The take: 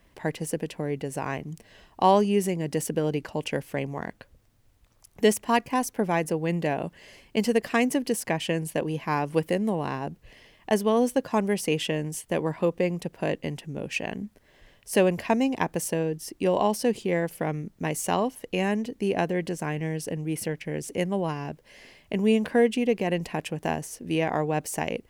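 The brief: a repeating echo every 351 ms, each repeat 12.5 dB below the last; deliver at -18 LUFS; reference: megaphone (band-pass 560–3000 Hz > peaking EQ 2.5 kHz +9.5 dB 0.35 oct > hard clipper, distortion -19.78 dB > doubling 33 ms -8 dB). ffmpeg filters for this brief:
-filter_complex "[0:a]highpass=560,lowpass=3000,equalizer=f=2500:t=o:w=0.35:g=9.5,aecho=1:1:351|702|1053:0.237|0.0569|0.0137,asoftclip=type=hard:threshold=0.178,asplit=2[s0][s1];[s1]adelay=33,volume=0.398[s2];[s0][s2]amix=inputs=2:normalize=0,volume=3.98"

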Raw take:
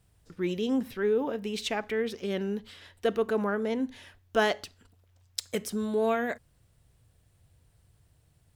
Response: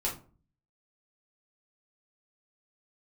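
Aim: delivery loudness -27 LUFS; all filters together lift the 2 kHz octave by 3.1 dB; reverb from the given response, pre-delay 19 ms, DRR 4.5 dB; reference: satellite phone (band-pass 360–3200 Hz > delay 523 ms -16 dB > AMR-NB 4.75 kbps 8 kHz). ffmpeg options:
-filter_complex "[0:a]equalizer=f=2000:t=o:g=4.5,asplit=2[s0][s1];[1:a]atrim=start_sample=2205,adelay=19[s2];[s1][s2]afir=irnorm=-1:irlink=0,volume=0.335[s3];[s0][s3]amix=inputs=2:normalize=0,highpass=360,lowpass=3200,aecho=1:1:523:0.158,volume=1.68" -ar 8000 -c:a libopencore_amrnb -b:a 4750

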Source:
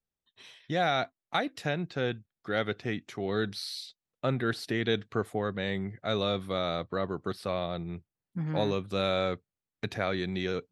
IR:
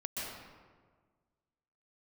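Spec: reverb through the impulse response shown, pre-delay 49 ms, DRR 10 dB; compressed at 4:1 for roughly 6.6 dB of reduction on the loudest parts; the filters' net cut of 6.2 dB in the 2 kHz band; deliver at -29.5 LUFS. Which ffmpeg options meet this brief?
-filter_complex "[0:a]equalizer=f=2000:t=o:g=-8.5,acompressor=threshold=0.0251:ratio=4,asplit=2[s0][s1];[1:a]atrim=start_sample=2205,adelay=49[s2];[s1][s2]afir=irnorm=-1:irlink=0,volume=0.237[s3];[s0][s3]amix=inputs=2:normalize=0,volume=2.51"

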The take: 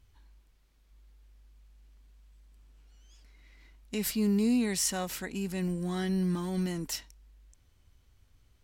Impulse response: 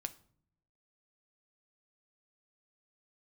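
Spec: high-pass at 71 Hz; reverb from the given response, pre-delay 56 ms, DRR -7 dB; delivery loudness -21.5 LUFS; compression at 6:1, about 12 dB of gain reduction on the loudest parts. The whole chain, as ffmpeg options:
-filter_complex "[0:a]highpass=71,acompressor=threshold=0.0141:ratio=6,asplit=2[s0][s1];[1:a]atrim=start_sample=2205,adelay=56[s2];[s1][s2]afir=irnorm=-1:irlink=0,volume=2.82[s3];[s0][s3]amix=inputs=2:normalize=0,volume=3.35"

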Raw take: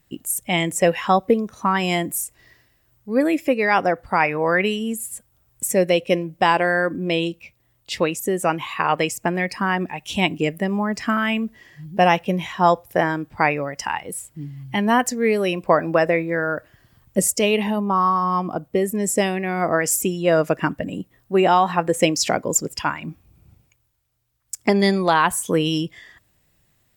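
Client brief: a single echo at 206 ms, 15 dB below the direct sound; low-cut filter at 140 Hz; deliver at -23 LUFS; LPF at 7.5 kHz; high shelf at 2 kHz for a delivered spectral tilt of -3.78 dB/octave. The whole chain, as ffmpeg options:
-af "highpass=140,lowpass=7500,highshelf=f=2000:g=3,aecho=1:1:206:0.178,volume=0.75"

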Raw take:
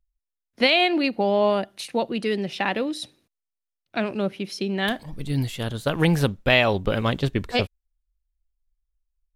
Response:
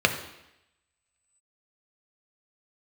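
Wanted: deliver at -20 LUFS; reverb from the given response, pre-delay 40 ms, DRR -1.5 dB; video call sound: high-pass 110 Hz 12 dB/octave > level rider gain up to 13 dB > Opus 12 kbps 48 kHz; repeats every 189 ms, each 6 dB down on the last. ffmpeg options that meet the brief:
-filter_complex "[0:a]aecho=1:1:189|378|567|756|945|1134:0.501|0.251|0.125|0.0626|0.0313|0.0157,asplit=2[s0][s1];[1:a]atrim=start_sample=2205,adelay=40[s2];[s1][s2]afir=irnorm=-1:irlink=0,volume=0.178[s3];[s0][s3]amix=inputs=2:normalize=0,highpass=110,dynaudnorm=m=4.47,volume=0.944" -ar 48000 -c:a libopus -b:a 12k

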